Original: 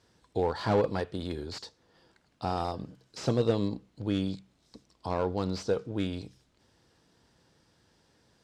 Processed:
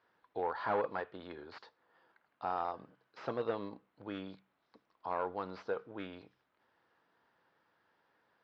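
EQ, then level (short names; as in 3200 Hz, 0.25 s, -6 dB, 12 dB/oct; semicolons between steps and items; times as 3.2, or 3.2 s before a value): band-pass 1300 Hz, Q 1.1; air absorption 200 m; +1.0 dB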